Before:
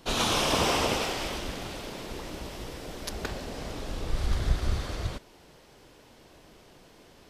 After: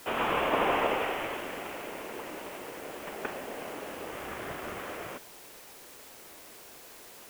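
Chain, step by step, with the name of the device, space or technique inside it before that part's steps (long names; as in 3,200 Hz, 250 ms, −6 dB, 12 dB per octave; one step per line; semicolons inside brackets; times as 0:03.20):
army field radio (band-pass filter 350–3,000 Hz; variable-slope delta modulation 16 kbit/s; white noise bed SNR 16 dB)
level +2 dB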